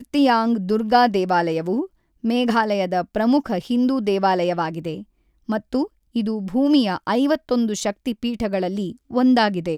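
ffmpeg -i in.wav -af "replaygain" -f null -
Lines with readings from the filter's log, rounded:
track_gain = +0.4 dB
track_peak = 0.421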